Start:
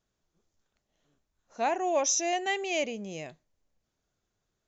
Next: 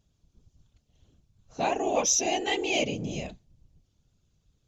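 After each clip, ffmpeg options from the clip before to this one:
ffmpeg -i in.wav -af "aexciter=amount=2.6:drive=9.1:freq=2600,aemphasis=mode=reproduction:type=riaa,afftfilt=real='hypot(re,im)*cos(2*PI*random(0))':imag='hypot(re,im)*sin(2*PI*random(1))':win_size=512:overlap=0.75,volume=5.5dB" out.wav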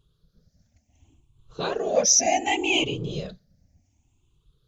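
ffmpeg -i in.wav -af "afftfilt=real='re*pow(10,16/40*sin(2*PI*(0.64*log(max(b,1)*sr/1024/100)/log(2)-(0.67)*(pts-256)/sr)))':imag='im*pow(10,16/40*sin(2*PI*(0.64*log(max(b,1)*sr/1024/100)/log(2)-(0.67)*(pts-256)/sr)))':win_size=1024:overlap=0.75" out.wav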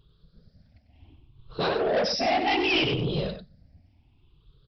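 ffmpeg -i in.wav -af "aresample=11025,asoftclip=type=tanh:threshold=-26.5dB,aresample=44100,aecho=1:1:95:0.376,volume=5.5dB" out.wav

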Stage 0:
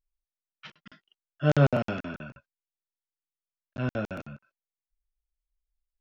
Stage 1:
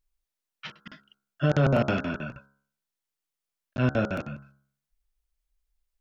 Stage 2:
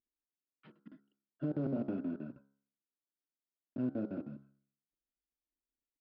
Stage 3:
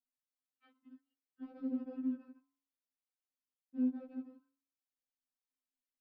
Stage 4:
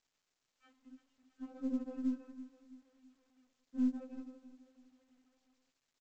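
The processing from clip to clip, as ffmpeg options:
ffmpeg -i in.wav -af "bandreject=frequency=68.81:width_type=h:width=4,bandreject=frequency=137.62:width_type=h:width=4,bandreject=frequency=206.43:width_type=h:width=4,bandreject=frequency=275.24:width_type=h:width=4,bandreject=frequency=344.05:width_type=h:width=4,bandreject=frequency=412.86:width_type=h:width=4,bandreject=frequency=481.67:width_type=h:width=4,bandreject=frequency=550.48:width_type=h:width=4,bandreject=frequency=619.29:width_type=h:width=4,bandreject=frequency=688.1:width_type=h:width=4,bandreject=frequency=756.91:width_type=h:width=4,bandreject=frequency=825.72:width_type=h:width=4,bandreject=frequency=894.53:width_type=h:width=4,bandreject=frequency=963.34:width_type=h:width=4,bandreject=frequency=1032.15:width_type=h:width=4,bandreject=frequency=1100.96:width_type=h:width=4,bandreject=frequency=1169.77:width_type=h:width=4,bandreject=frequency=1238.58:width_type=h:width=4,bandreject=frequency=1307.39:width_type=h:width=4,bandreject=frequency=1376.2:width_type=h:width=4,bandreject=frequency=1445.01:width_type=h:width=4,bandreject=frequency=1513.82:width_type=h:width=4,bandreject=frequency=1582.63:width_type=h:width=4,bandreject=frequency=1651.44:width_type=h:width=4,alimiter=limit=-19.5dB:level=0:latency=1:release=62,volume=6.5dB" out.wav
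ffmpeg -i in.wav -af "aresample=11025,acrusher=bits=4:mode=log:mix=0:aa=0.000001,aresample=44100,bandpass=frequency=290:width_type=q:width=2.9:csg=0,acompressor=threshold=-35dB:ratio=2" out.wav
ffmpeg -i in.wav -af "afftfilt=real='re*3.46*eq(mod(b,12),0)':imag='im*3.46*eq(mod(b,12),0)':win_size=2048:overlap=0.75,volume=-4dB" out.wav
ffmpeg -i in.wav -af "aeval=exprs='if(lt(val(0),0),0.708*val(0),val(0))':channel_layout=same,aecho=1:1:329|658|987|1316:0.178|0.0765|0.0329|0.0141,volume=2dB" -ar 16000 -c:a pcm_mulaw out.wav

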